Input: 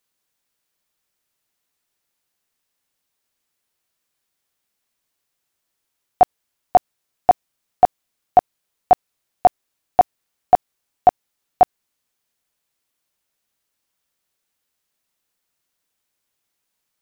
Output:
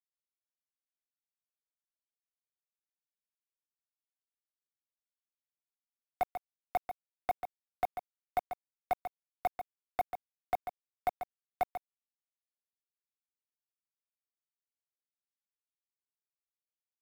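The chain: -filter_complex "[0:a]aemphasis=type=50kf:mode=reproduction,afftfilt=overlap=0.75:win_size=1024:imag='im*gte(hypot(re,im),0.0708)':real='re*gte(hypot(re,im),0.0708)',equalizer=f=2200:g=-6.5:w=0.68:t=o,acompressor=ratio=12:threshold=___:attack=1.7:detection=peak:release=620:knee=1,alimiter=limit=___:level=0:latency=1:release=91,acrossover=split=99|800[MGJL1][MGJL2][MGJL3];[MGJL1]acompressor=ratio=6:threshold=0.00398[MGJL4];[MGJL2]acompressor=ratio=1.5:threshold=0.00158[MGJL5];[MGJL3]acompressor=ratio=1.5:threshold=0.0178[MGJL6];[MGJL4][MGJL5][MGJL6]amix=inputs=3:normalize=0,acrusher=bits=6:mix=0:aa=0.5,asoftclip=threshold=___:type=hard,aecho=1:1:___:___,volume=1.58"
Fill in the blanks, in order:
0.2, 0.188, 0.0398, 141, 0.355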